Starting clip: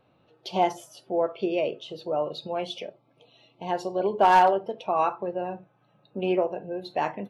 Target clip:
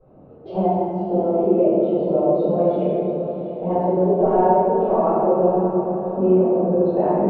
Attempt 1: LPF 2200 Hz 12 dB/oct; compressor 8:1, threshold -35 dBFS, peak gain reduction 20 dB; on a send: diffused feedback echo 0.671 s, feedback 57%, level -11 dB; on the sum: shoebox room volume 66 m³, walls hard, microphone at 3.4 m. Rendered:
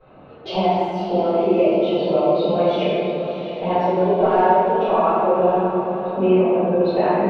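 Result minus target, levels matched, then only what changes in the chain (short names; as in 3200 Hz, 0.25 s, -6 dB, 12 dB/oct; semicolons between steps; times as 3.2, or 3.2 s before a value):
2000 Hz band +13.5 dB
change: LPF 550 Hz 12 dB/oct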